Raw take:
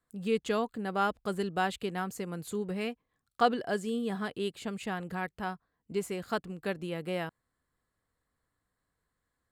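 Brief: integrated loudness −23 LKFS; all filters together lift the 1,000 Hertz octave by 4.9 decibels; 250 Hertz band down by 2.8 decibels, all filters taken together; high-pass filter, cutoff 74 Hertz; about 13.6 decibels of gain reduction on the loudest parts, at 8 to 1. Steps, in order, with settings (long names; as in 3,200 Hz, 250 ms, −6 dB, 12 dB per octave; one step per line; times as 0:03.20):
high-pass filter 74 Hz
parametric band 250 Hz −4 dB
parametric band 1,000 Hz +7.5 dB
downward compressor 8 to 1, threshold −30 dBFS
level +14 dB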